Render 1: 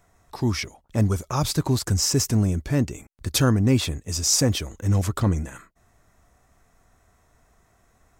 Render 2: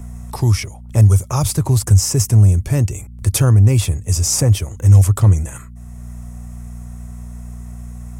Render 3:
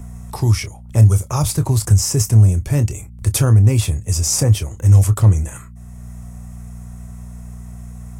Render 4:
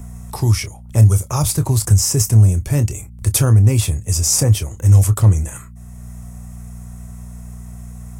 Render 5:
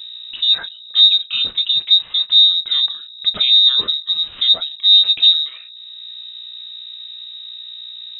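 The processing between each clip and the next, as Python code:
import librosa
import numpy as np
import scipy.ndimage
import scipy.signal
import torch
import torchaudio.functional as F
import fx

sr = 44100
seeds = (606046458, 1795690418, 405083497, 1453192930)

y1 = fx.graphic_eq_15(x, sr, hz=(100, 250, 1600, 4000, 10000), db=(12, -8, -5, -7, 9))
y1 = fx.dmg_buzz(y1, sr, base_hz=60.0, harmonics=4, level_db=-43.0, tilt_db=-7, odd_only=False)
y1 = fx.band_squash(y1, sr, depth_pct=40)
y1 = y1 * 10.0 ** (3.5 / 20.0)
y2 = fx.doubler(y1, sr, ms=27.0, db=-11.5)
y2 = y2 * 10.0 ** (-1.0 / 20.0)
y3 = fx.high_shelf(y2, sr, hz=7100.0, db=5.0)
y4 = fx.freq_invert(y3, sr, carrier_hz=3800)
y4 = y4 * 10.0 ** (-2.0 / 20.0)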